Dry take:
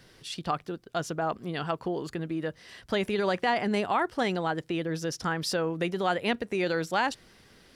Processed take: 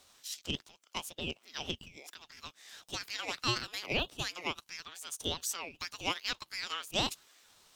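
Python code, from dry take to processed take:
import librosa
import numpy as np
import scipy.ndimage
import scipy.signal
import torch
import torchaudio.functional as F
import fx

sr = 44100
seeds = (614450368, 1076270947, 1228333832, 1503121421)

y = fx.formant_shift(x, sr, semitones=6)
y = scipy.signal.sosfilt(scipy.signal.butter(12, 1200.0, 'highpass', fs=sr, output='sos'), y)
y = fx.ring_lfo(y, sr, carrier_hz=1200.0, swing_pct=30, hz=1.7)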